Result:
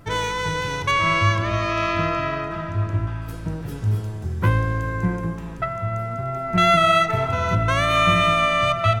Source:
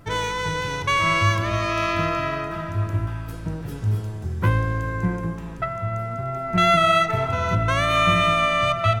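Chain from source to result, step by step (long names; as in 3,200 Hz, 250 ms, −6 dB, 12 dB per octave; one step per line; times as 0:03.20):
0:00.91–0:03.22: high-frequency loss of the air 58 metres
level +1 dB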